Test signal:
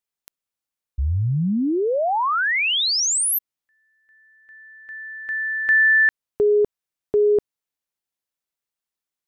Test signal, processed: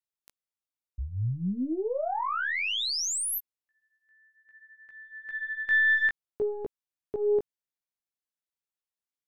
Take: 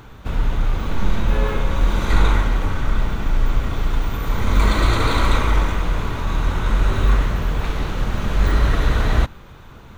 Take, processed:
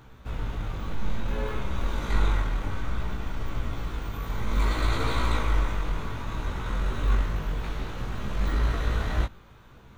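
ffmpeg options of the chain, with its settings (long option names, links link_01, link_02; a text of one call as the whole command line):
ffmpeg -i in.wav -af "aeval=exprs='0.75*(cos(1*acos(clip(val(0)/0.75,-1,1)))-cos(1*PI/2))+0.0237*(cos(3*acos(clip(val(0)/0.75,-1,1)))-cos(3*PI/2))+0.0335*(cos(4*acos(clip(val(0)/0.75,-1,1)))-cos(4*PI/2))':channel_layout=same,flanger=delay=15.5:depth=3.9:speed=0.6,volume=-5.5dB" out.wav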